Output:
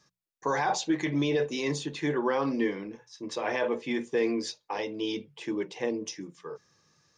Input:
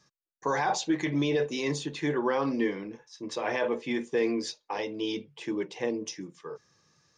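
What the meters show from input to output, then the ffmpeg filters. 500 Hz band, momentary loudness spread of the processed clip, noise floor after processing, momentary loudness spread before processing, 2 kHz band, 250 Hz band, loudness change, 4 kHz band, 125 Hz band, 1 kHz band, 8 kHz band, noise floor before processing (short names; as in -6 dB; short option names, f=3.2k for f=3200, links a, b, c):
0.0 dB, 13 LU, -79 dBFS, 13 LU, 0.0 dB, 0.0 dB, 0.0 dB, 0.0 dB, 0.0 dB, 0.0 dB, 0.0 dB, -80 dBFS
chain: -af "bandreject=f=60:t=h:w=6,bandreject=f=120:t=h:w=6,bandreject=f=180:t=h:w=6"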